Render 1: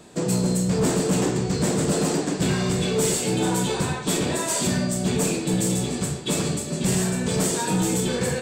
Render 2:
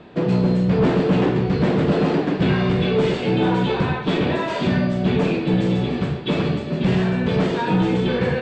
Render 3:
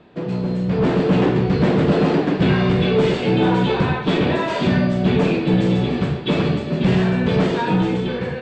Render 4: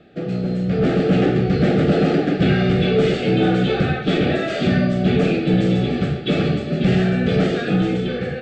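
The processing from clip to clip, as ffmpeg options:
-af "lowpass=f=3.3k:w=0.5412,lowpass=f=3.3k:w=1.3066,volume=4.5dB"
-af "dynaudnorm=f=230:g=7:m=8.5dB,volume=-5.5dB"
-af "asuperstop=centerf=990:order=12:qfactor=3.1"

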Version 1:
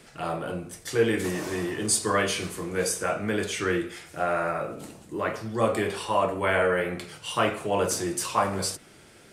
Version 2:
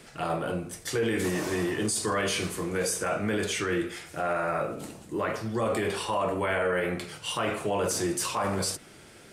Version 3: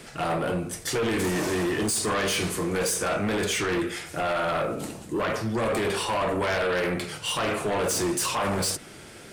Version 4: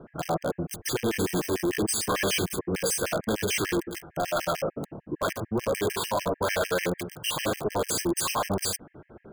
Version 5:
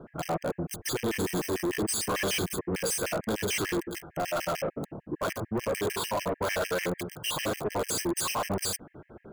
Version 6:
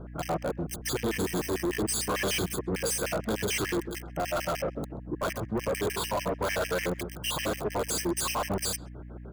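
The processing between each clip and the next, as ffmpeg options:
-af "alimiter=limit=-21dB:level=0:latency=1:release=14,volume=1.5dB"
-af "aeval=exprs='0.112*sin(PI/2*1.78*val(0)/0.112)':c=same,volume=-3dB"
-filter_complex "[0:a]acrossover=split=1300[a][b];[b]acrusher=bits=4:mix=0:aa=0.000001[c];[a][c]amix=inputs=2:normalize=0,afftfilt=real='re*gt(sin(2*PI*6.7*pts/sr)*(1-2*mod(floor(b*sr/1024/1600),2)),0)':imag='im*gt(sin(2*PI*6.7*pts/sr)*(1-2*mod(floor(b*sr/1024/1600),2)),0)':win_size=1024:overlap=0.75,volume=1.5dB"
-af "asoftclip=type=tanh:threshold=-23.5dB"
-filter_complex "[0:a]aeval=exprs='val(0)+0.00794*(sin(2*PI*60*n/s)+sin(2*PI*2*60*n/s)/2+sin(2*PI*3*60*n/s)/3+sin(2*PI*4*60*n/s)/4+sin(2*PI*5*60*n/s)/5)':c=same,asplit=2[a][b];[b]adelay=130,highpass=300,lowpass=3.4k,asoftclip=type=hard:threshold=-31.5dB,volume=-20dB[c];[a][c]amix=inputs=2:normalize=0"

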